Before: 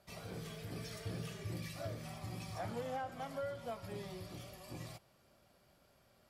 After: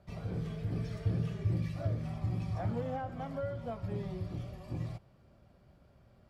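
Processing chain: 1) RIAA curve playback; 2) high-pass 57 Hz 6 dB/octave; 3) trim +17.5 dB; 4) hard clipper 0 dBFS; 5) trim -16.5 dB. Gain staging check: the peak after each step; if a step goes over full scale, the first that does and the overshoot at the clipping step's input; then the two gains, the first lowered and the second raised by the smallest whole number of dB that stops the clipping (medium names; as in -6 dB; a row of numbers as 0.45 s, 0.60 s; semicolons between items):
-20.0 dBFS, -21.5 dBFS, -4.0 dBFS, -4.0 dBFS, -20.5 dBFS; nothing clips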